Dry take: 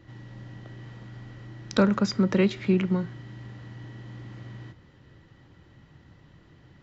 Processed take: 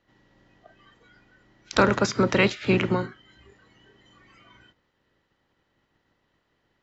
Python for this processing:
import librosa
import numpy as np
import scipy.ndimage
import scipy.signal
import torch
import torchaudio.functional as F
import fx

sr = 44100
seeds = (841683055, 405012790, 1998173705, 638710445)

y = fx.spec_clip(x, sr, under_db=17)
y = fx.noise_reduce_blind(y, sr, reduce_db=19)
y = y * librosa.db_to_amplitude(1.5)